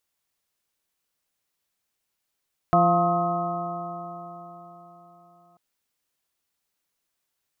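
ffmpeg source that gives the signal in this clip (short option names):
-f lavfi -i "aevalsrc='0.0841*pow(10,-3*t/4.08)*sin(2*PI*171.21*t)+0.0473*pow(10,-3*t/4.08)*sin(2*PI*343.64*t)+0.0224*pow(10,-3*t/4.08)*sin(2*PI*518.51*t)+0.15*pow(10,-3*t/4.08)*sin(2*PI*697.01*t)+0.0178*pow(10,-3*t/4.08)*sin(2*PI*880.28*t)+0.0531*pow(10,-3*t/4.08)*sin(2*PI*1069.41*t)+0.0794*pow(10,-3*t/4.08)*sin(2*PI*1265.43*t)':d=2.84:s=44100"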